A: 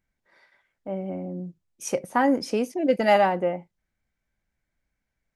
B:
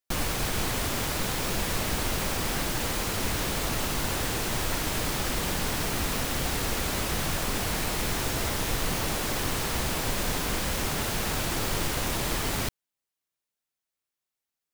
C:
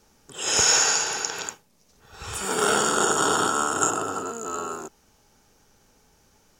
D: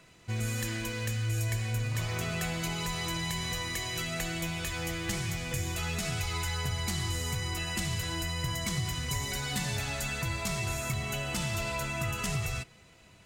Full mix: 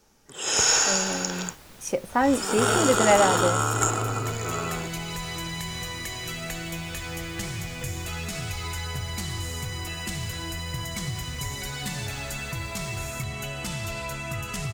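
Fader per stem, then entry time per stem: −0.5, −19.5, −1.5, +0.5 decibels; 0.00, 0.50, 0.00, 2.30 seconds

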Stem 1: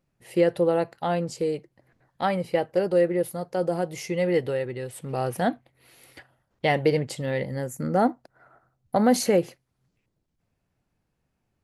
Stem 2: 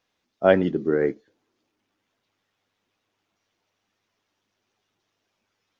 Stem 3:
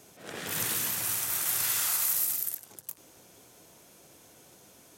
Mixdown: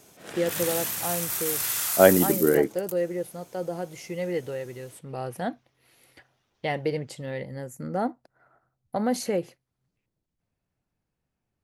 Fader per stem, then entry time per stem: −6.0, +1.0, +0.5 decibels; 0.00, 1.55, 0.00 seconds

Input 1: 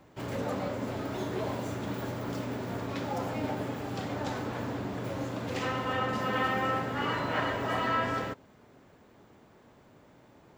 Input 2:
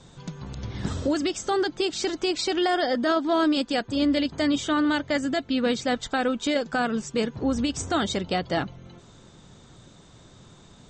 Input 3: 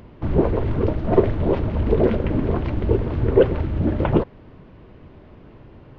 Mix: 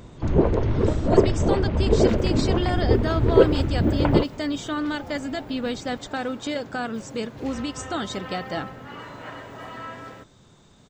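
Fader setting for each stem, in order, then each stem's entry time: −8.0, −4.0, −0.5 decibels; 1.90, 0.00, 0.00 seconds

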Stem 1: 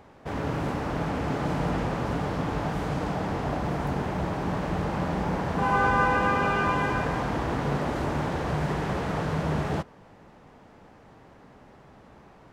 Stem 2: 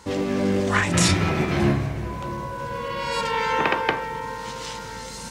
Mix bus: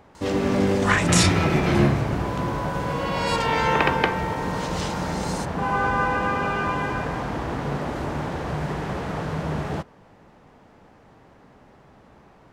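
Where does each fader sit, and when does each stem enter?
0.0, +1.0 decibels; 0.00, 0.15 seconds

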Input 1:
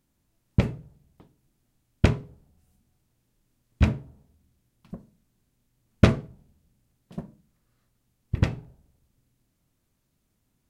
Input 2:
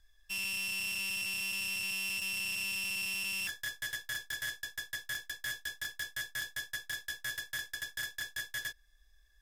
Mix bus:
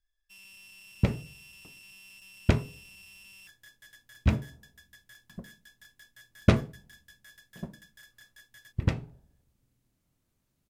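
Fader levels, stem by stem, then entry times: −3.5, −16.5 decibels; 0.45, 0.00 seconds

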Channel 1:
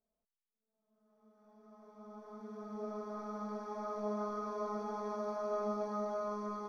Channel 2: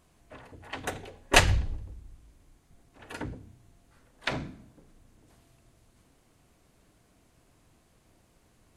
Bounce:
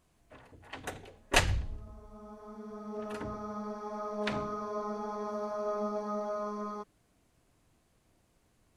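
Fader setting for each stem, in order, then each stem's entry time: +2.5, −6.0 decibels; 0.15, 0.00 seconds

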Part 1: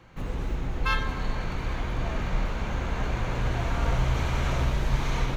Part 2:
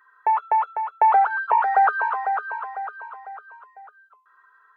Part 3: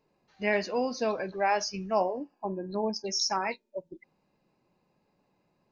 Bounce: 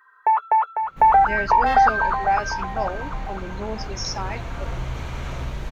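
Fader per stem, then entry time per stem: −4.0, +2.0, −1.0 decibels; 0.80, 0.00, 0.85 seconds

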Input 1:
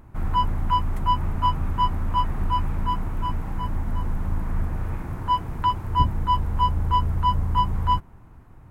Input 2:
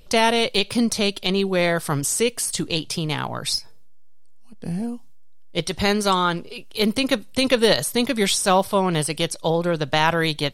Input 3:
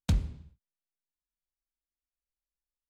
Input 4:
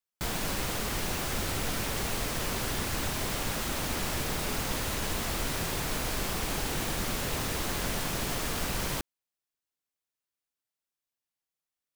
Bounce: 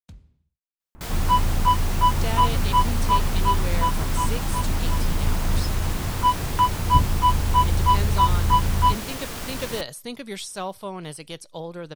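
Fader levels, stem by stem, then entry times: +2.5, −13.5, −19.0, −1.0 decibels; 0.95, 2.10, 0.00, 0.80 seconds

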